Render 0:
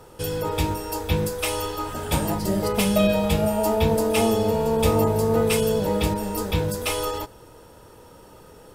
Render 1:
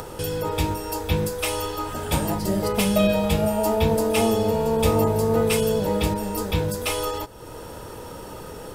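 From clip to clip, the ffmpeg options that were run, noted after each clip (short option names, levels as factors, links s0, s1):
-af "acompressor=mode=upward:threshold=0.0501:ratio=2.5"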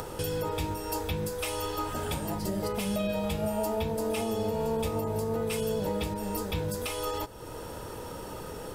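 -af "alimiter=limit=0.119:level=0:latency=1:release=389,volume=0.75"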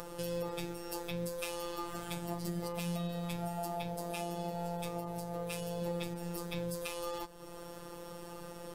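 -af "aeval=exprs='0.0944*(cos(1*acos(clip(val(0)/0.0944,-1,1)))-cos(1*PI/2))+0.000841*(cos(7*acos(clip(val(0)/0.0944,-1,1)))-cos(7*PI/2))':c=same,afftfilt=real='hypot(re,im)*cos(PI*b)':imag='0':win_size=1024:overlap=0.75,volume=0.708"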